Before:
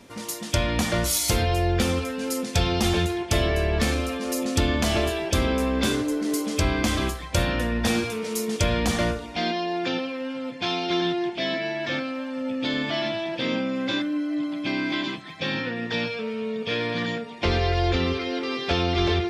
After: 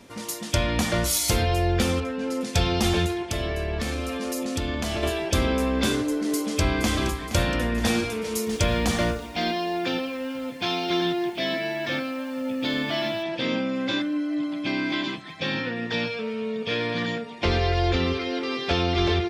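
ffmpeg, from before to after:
ffmpeg -i in.wav -filter_complex "[0:a]asettb=1/sr,asplit=3[link_01][link_02][link_03];[link_01]atrim=end=2.004[link_04];[link_02]atrim=start=2:end=2.41,asetpts=PTS-STARTPTS,afade=type=in:duration=0.004:curve=qsin,afade=type=out:start_time=0.406:duration=0.004:curve=qsin,aemphasis=mode=reproduction:type=75fm[link_05];[link_03]atrim=start=2.406[link_06];[link_04][link_05]acrossfade=duration=0.004:curve1=hsin:curve2=qsin[link_07];[link_07][link_06]acrossfade=duration=0.004:curve1=qsin:curve2=hsin,asettb=1/sr,asplit=3[link_08][link_09][link_10];[link_08]atrim=end=3.134[link_11];[link_09]atrim=start=3.13:end=5.03,asetpts=PTS-STARTPTS,afade=type=in:duration=0.004:curve=qsin,afade=type=out:start_time=1.896:duration=0.004:curve=qsin,acompressor=threshold=-25dB:ratio=3:attack=3.2:release=140:knee=1:detection=peak[link_12];[link_10]atrim=start=5.026[link_13];[link_11][link_12]acrossfade=duration=0.004:curve1=hsin:curve2=qsin[link_14];[link_14][link_13]acrossfade=duration=0.004:curve1=qsin:curve2=hsin,asplit=2[link_15][link_16];[link_16]afade=type=in:start_time=6.32:duration=0.01,afade=type=out:start_time=6.96:duration=0.01,aecho=0:1:470|940|1410|1880|2350|2820|3290|3760:0.266073|0.172947|0.112416|0.0730702|0.0474956|0.0308721|0.0200669|0.0130435[link_17];[link_15][link_17]amix=inputs=2:normalize=0,asettb=1/sr,asplit=3[link_18][link_19][link_20];[link_18]atrim=end=8.474[link_21];[link_19]atrim=start=8.47:end=13.23,asetpts=PTS-STARTPTS,afade=type=in:duration=0.004:curve=qsin,afade=type=out:start_time=4.756:duration=0.004:curve=qsin,acrusher=bits=7:mix=0:aa=0.5[link_22];[link_20]atrim=start=13.226[link_23];[link_21][link_22]acrossfade=duration=0.004:curve1=hsin:curve2=qsin[link_24];[link_24][link_23]acrossfade=duration=0.004:curve1=qsin:curve2=hsin" out.wav

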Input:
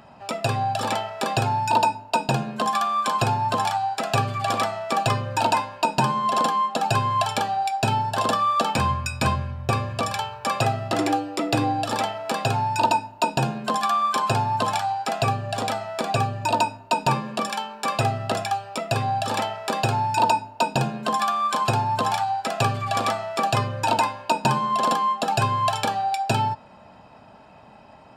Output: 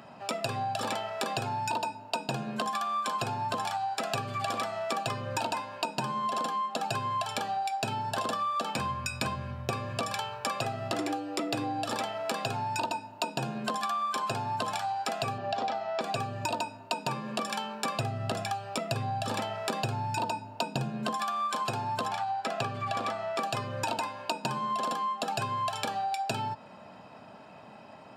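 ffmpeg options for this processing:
ffmpeg -i in.wav -filter_complex "[0:a]asettb=1/sr,asplit=3[link_01][link_02][link_03];[link_01]atrim=end=15.384[link_04];[link_02]atrim=start=15.38:end=16.01,asetpts=PTS-STARTPTS,afade=type=in:duration=0.004:curve=qsin,afade=type=out:start_time=0.626:duration=0.004:curve=qsin,highpass=110,equalizer=frequency=120:width_type=q:width=4:gain=-7,equalizer=frequency=380:width_type=q:width=4:gain=3,equalizer=frequency=770:width_type=q:width=4:gain=9,lowpass=frequency=5700:width=0.5412,lowpass=frequency=5700:width=1.3066[link_05];[link_03]atrim=start=16.006[link_06];[link_04][link_05]acrossfade=duration=0.004:curve1=hsin:curve2=qsin[link_07];[link_07][link_06]acrossfade=duration=0.004:curve1=qsin:curve2=hsin,asettb=1/sr,asplit=3[link_08][link_09][link_10];[link_08]atrim=end=17.504[link_11];[link_09]atrim=start=17.5:end=21.12,asetpts=PTS-STARTPTS,afade=type=in:duration=0.004:curve=qsin,afade=type=out:start_time=3.616:duration=0.004:curve=qsin,lowshelf=frequency=170:gain=11.5[link_12];[link_10]atrim=start=21.116[link_13];[link_11][link_12]acrossfade=duration=0.004:curve1=hsin:curve2=qsin[link_14];[link_14][link_13]acrossfade=duration=0.004:curve1=qsin:curve2=hsin,asettb=1/sr,asplit=3[link_15][link_16][link_17];[link_15]atrim=end=22.084[link_18];[link_16]atrim=start=22.08:end=23.39,asetpts=PTS-STARTPTS,afade=type=in:duration=0.004:curve=qsin,afade=type=out:start_time=1.306:duration=0.004:curve=qsin,lowpass=frequency=3500:poles=1[link_19];[link_17]atrim=start=23.386[link_20];[link_18][link_19]acrossfade=duration=0.004:curve1=hsin:curve2=qsin[link_21];[link_21][link_20]acrossfade=duration=0.004:curve1=qsin:curve2=hsin,highpass=130,equalizer=frequency=860:width_type=o:width=0.27:gain=-3.5,acompressor=threshold=-29dB:ratio=6" out.wav

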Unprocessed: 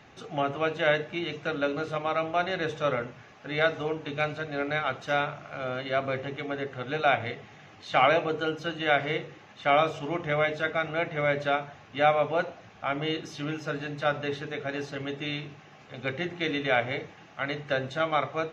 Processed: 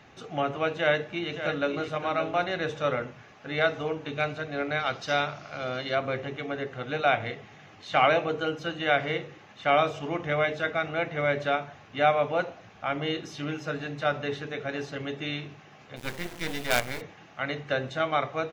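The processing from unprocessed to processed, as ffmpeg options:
ffmpeg -i in.wav -filter_complex "[0:a]asplit=2[link_01][link_02];[link_02]afade=type=in:start_time=0.76:duration=0.01,afade=type=out:start_time=1.86:duration=0.01,aecho=0:1:570|1140:0.354813|0.0354813[link_03];[link_01][link_03]amix=inputs=2:normalize=0,asettb=1/sr,asplit=3[link_04][link_05][link_06];[link_04]atrim=end=4.794[link_07];[link_05]atrim=start=4.79:end=5.95,asetpts=PTS-STARTPTS,afade=type=in:duration=0.004:curve=qsin,afade=type=out:start_time=1.156:duration=0.004:curve=qsin,equalizer=frequency=4900:width=1.7:gain=11.5[link_08];[link_06]atrim=start=5.946[link_09];[link_07][link_08]acrossfade=duration=0.004:curve1=hsin:curve2=qsin[link_10];[link_10][link_09]acrossfade=duration=0.004:curve1=qsin:curve2=hsin,asplit=3[link_11][link_12][link_13];[link_11]afade=type=out:start_time=15.96:duration=0.02[link_14];[link_12]acrusher=bits=4:dc=4:mix=0:aa=0.000001,afade=type=in:start_time=15.96:duration=0.02,afade=type=out:start_time=17:duration=0.02[link_15];[link_13]afade=type=in:start_time=17:duration=0.02[link_16];[link_14][link_15][link_16]amix=inputs=3:normalize=0" out.wav

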